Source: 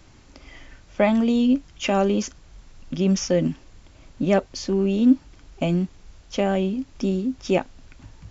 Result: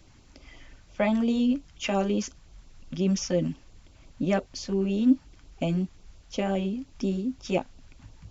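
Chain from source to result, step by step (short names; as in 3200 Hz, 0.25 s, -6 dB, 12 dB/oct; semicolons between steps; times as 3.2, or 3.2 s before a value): LFO notch sine 5.7 Hz 320–1900 Hz; gain -4 dB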